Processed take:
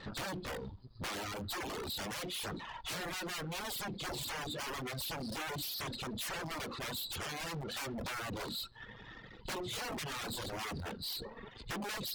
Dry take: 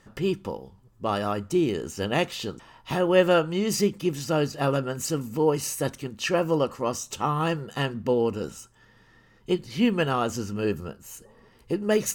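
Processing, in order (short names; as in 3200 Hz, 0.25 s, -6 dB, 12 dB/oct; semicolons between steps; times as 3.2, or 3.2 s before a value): nonlinear frequency compression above 3300 Hz 4:1; notches 60/120/180/240/300/360 Hz; compressor 5:1, threshold -30 dBFS, peak gain reduction 15 dB; wrapped overs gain 31.5 dB; tube stage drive 50 dB, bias 0.75; reverb removal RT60 1 s; gain +12.5 dB; Opus 256 kbps 48000 Hz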